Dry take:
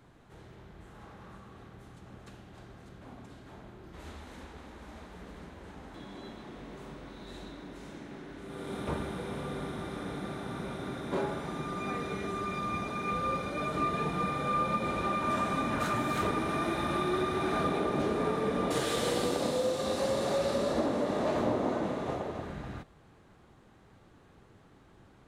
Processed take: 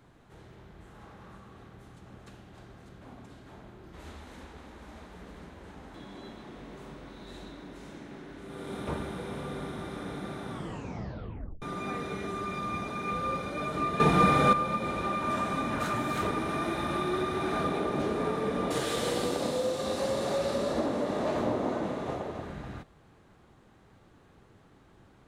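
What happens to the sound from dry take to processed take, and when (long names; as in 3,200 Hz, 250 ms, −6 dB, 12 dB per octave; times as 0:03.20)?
0:10.50: tape stop 1.12 s
0:14.00–0:14.53: clip gain +10 dB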